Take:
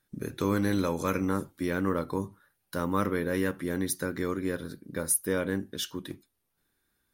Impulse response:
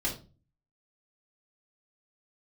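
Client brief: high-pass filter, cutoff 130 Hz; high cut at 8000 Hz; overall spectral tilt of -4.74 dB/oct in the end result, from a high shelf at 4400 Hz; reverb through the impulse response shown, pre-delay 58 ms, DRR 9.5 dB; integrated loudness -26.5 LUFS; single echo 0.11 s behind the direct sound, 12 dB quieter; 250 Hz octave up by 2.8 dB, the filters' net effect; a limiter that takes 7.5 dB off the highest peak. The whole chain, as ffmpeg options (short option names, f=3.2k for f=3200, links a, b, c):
-filter_complex "[0:a]highpass=130,lowpass=8k,equalizer=f=250:t=o:g=4,highshelf=f=4.4k:g=8.5,alimiter=limit=-18.5dB:level=0:latency=1,aecho=1:1:110:0.251,asplit=2[a][b];[1:a]atrim=start_sample=2205,adelay=58[c];[b][c]afir=irnorm=-1:irlink=0,volume=-15dB[d];[a][d]amix=inputs=2:normalize=0,volume=3dB"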